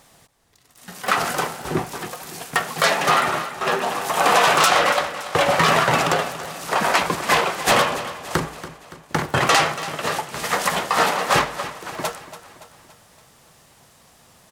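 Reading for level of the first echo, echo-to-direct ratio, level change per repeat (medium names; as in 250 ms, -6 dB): -14.0 dB, -12.5 dB, -5.5 dB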